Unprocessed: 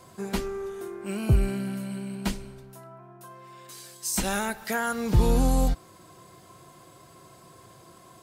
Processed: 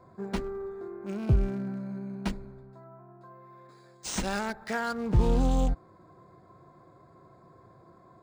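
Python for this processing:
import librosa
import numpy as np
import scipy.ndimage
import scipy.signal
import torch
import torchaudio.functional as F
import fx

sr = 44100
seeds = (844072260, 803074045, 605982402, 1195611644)

y = fx.wiener(x, sr, points=15)
y = np.interp(np.arange(len(y)), np.arange(len(y))[::3], y[::3])
y = F.gain(torch.from_numpy(y), -2.5).numpy()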